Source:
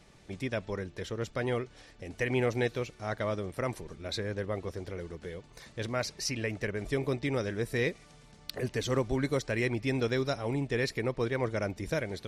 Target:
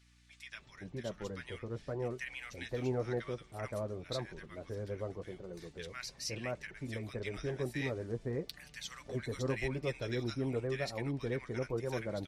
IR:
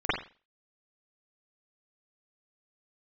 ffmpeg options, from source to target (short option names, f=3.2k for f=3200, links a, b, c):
-filter_complex "[0:a]acrossover=split=1300[a][b];[a]adelay=520[c];[c][b]amix=inputs=2:normalize=0,flanger=delay=5.3:depth=2.8:regen=-43:speed=0.92:shape=sinusoidal,aeval=exprs='val(0)+0.000708*(sin(2*PI*60*n/s)+sin(2*PI*2*60*n/s)/2+sin(2*PI*3*60*n/s)/3+sin(2*PI*4*60*n/s)/4+sin(2*PI*5*60*n/s)/5)':c=same,volume=-2dB"